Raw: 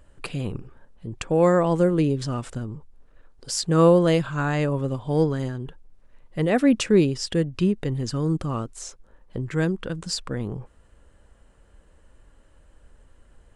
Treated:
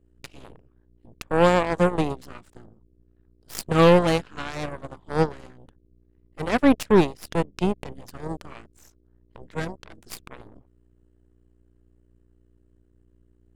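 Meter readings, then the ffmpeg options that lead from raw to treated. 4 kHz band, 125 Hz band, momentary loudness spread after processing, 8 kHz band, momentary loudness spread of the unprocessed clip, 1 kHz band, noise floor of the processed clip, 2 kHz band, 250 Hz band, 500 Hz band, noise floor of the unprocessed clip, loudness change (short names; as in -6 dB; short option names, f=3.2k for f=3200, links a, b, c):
-2.5 dB, -5.0 dB, 20 LU, -7.5 dB, 18 LU, +3.5 dB, -62 dBFS, +2.0 dB, -2.5 dB, -1.0 dB, -57 dBFS, +0.5 dB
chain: -af "aeval=exprs='val(0)+0.0141*(sin(2*PI*60*n/s)+sin(2*PI*2*60*n/s)/2+sin(2*PI*3*60*n/s)/3+sin(2*PI*4*60*n/s)/4+sin(2*PI*5*60*n/s)/5)':c=same,aeval=exprs='0.473*(cos(1*acos(clip(val(0)/0.473,-1,1)))-cos(1*PI/2))+0.00376*(cos(5*acos(clip(val(0)/0.473,-1,1)))-cos(5*PI/2))+0.0473*(cos(6*acos(clip(val(0)/0.473,-1,1)))-cos(6*PI/2))+0.075*(cos(7*acos(clip(val(0)/0.473,-1,1)))-cos(7*PI/2))':c=same"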